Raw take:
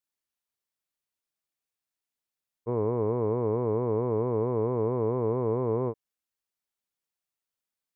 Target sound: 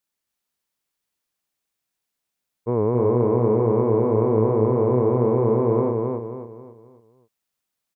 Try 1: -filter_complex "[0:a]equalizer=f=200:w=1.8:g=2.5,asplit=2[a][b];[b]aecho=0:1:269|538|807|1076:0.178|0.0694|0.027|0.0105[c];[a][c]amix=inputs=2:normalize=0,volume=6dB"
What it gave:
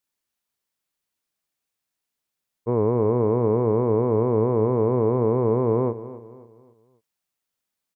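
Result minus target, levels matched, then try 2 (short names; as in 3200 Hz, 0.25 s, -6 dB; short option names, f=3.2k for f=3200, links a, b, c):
echo-to-direct -11.5 dB
-filter_complex "[0:a]equalizer=f=200:w=1.8:g=2.5,asplit=2[a][b];[b]aecho=0:1:269|538|807|1076|1345:0.668|0.261|0.102|0.0396|0.0155[c];[a][c]amix=inputs=2:normalize=0,volume=6dB"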